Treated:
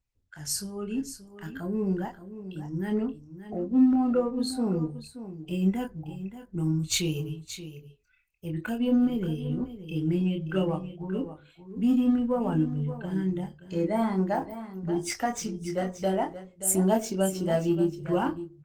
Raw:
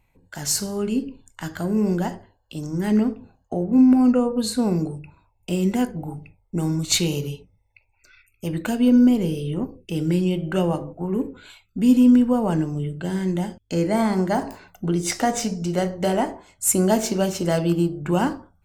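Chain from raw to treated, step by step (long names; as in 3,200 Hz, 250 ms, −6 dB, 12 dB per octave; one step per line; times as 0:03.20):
spectral dynamics exaggerated over time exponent 1.5
in parallel at −12 dB: hard clipping −21 dBFS, distortion −7 dB
on the sum: double-tracking delay 26 ms −5 dB
single-tap delay 578 ms −12.5 dB
level −5 dB
Opus 24 kbit/s 48,000 Hz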